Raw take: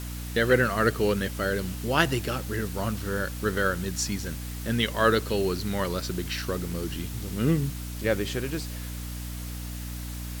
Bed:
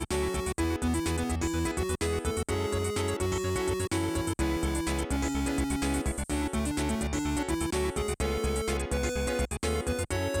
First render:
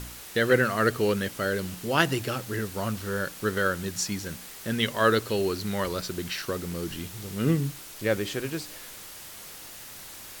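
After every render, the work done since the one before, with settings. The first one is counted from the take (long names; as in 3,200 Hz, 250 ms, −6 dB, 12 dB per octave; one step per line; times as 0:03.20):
hum removal 60 Hz, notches 5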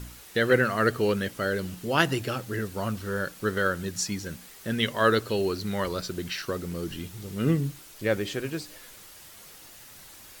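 broadband denoise 6 dB, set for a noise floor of −44 dBFS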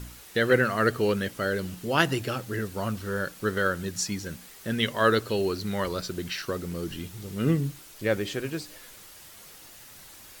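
no processing that can be heard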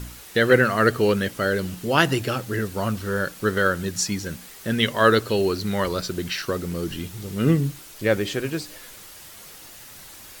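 level +5 dB
brickwall limiter −2 dBFS, peak gain reduction 2 dB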